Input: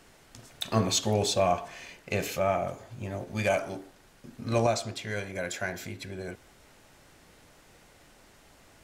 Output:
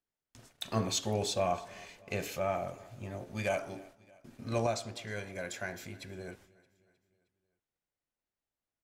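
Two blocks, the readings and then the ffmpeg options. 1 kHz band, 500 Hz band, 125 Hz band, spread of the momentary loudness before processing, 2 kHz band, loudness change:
-6.0 dB, -6.0 dB, -6.0 dB, 15 LU, -6.0 dB, -6.0 dB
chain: -af "agate=range=-33dB:threshold=-51dB:ratio=16:detection=peak,aecho=1:1:311|622|933|1244:0.0708|0.0375|0.0199|0.0105,volume=-6dB"

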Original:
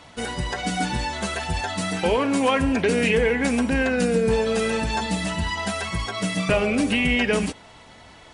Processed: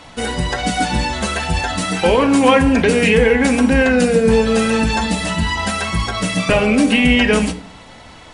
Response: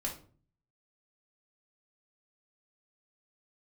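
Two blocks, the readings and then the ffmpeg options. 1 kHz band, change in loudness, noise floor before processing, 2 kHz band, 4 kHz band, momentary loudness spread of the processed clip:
+7.5 dB, +7.5 dB, -47 dBFS, +7.0 dB, +7.0 dB, 8 LU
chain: -filter_complex "[0:a]asplit=2[a][b];[1:a]atrim=start_sample=2205,asetrate=40572,aresample=44100[c];[b][c]afir=irnorm=-1:irlink=0,volume=-5.5dB[d];[a][d]amix=inputs=2:normalize=0,volume=3.5dB"

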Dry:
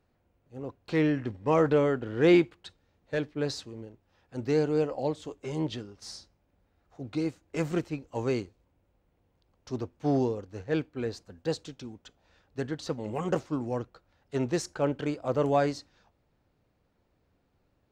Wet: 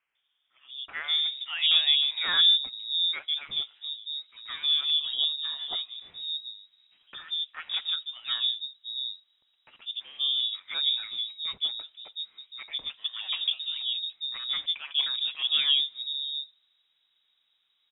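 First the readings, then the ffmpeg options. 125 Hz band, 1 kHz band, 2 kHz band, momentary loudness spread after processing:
under -30 dB, -10.0 dB, +2.5 dB, 16 LU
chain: -filter_complex "[0:a]lowshelf=f=71:g=-8.5,acrossover=split=280|1100[a][b][c];[b]adelay=150[d];[a]adelay=700[e];[e][d][c]amix=inputs=3:normalize=0,lowpass=f=3.3k:t=q:w=0.5098,lowpass=f=3.3k:t=q:w=0.6013,lowpass=f=3.3k:t=q:w=0.9,lowpass=f=3.3k:t=q:w=2.563,afreqshift=-3900,volume=2.5dB"

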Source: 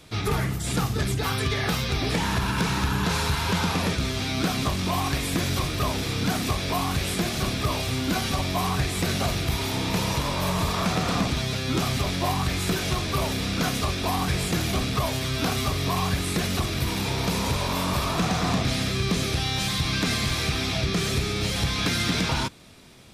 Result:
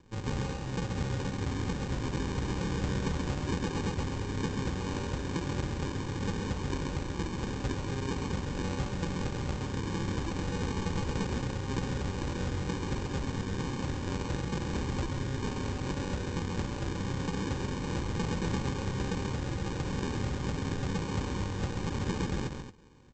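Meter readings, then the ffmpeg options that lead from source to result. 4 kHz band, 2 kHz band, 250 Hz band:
-16.0 dB, -11.5 dB, -6.0 dB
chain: -af "aresample=16000,acrusher=samples=24:mix=1:aa=0.000001,aresample=44100,aecho=1:1:134.1|224.5:0.501|0.316,volume=-8.5dB"

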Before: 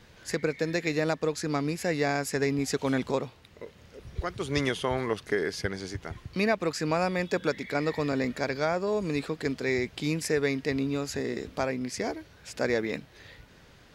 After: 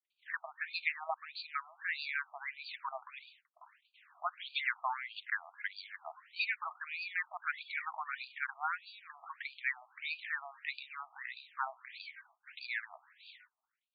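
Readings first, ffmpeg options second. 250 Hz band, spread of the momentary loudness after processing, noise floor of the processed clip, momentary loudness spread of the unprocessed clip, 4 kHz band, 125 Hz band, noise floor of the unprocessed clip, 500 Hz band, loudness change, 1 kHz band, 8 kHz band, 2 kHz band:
under -40 dB, 15 LU, under -85 dBFS, 10 LU, -6.5 dB, under -40 dB, -55 dBFS, -26.0 dB, -10.0 dB, -6.0 dB, under -40 dB, -3.5 dB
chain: -af "adynamicequalizer=threshold=0.0126:dfrequency=490:dqfactor=0.8:tfrequency=490:tqfactor=0.8:attack=5:release=100:ratio=0.375:range=2.5:mode=cutabove:tftype=bell,agate=range=-49dB:threshold=-50dB:ratio=16:detection=peak,afftfilt=real='re*between(b*sr/1024,900*pow(3400/900,0.5+0.5*sin(2*PI*1.6*pts/sr))/1.41,900*pow(3400/900,0.5+0.5*sin(2*PI*1.6*pts/sr))*1.41)':imag='im*between(b*sr/1024,900*pow(3400/900,0.5+0.5*sin(2*PI*1.6*pts/sr))/1.41,900*pow(3400/900,0.5+0.5*sin(2*PI*1.6*pts/sr))*1.41)':win_size=1024:overlap=0.75,volume=1dB"

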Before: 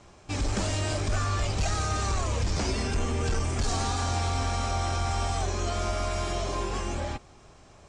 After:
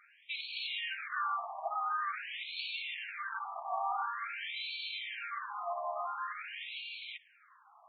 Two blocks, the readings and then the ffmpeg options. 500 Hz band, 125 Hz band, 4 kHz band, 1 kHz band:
-13.5 dB, under -40 dB, -4.5 dB, -4.0 dB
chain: -af "tiltshelf=f=970:g=-3.5,afftfilt=real='re*between(b*sr/1024,850*pow(3200/850,0.5+0.5*sin(2*PI*0.47*pts/sr))/1.41,850*pow(3200/850,0.5+0.5*sin(2*PI*0.47*pts/sr))*1.41)':imag='im*between(b*sr/1024,850*pow(3200/850,0.5+0.5*sin(2*PI*0.47*pts/sr))/1.41,850*pow(3200/850,0.5+0.5*sin(2*PI*0.47*pts/sr))*1.41)':win_size=1024:overlap=0.75"

